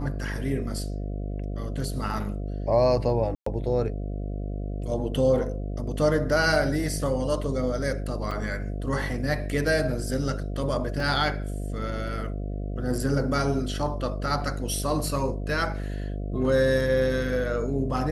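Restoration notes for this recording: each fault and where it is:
buzz 50 Hz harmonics 14 -31 dBFS
3.35–3.46 s: dropout 114 ms
8.31 s: dropout 4.6 ms
11.00 s: dropout 2.6 ms

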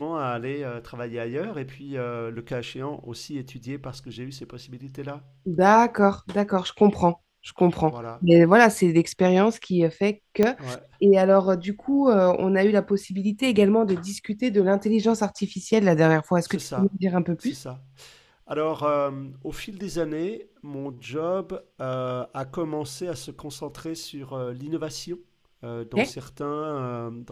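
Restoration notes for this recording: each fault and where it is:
10.43 s: pop -9 dBFS

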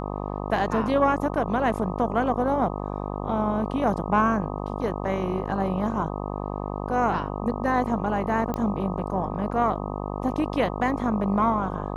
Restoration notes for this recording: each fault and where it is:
buzz 50 Hz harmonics 25 -31 dBFS
8.54 s: pop -16 dBFS

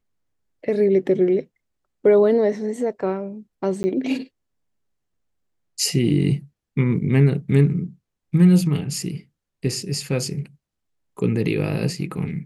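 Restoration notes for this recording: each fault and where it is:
3.83–3.84 s: dropout 10 ms

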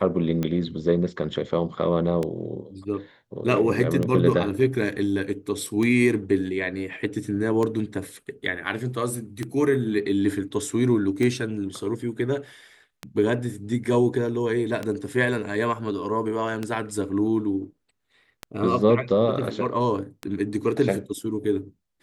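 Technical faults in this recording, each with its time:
tick 33 1/3 rpm -14 dBFS

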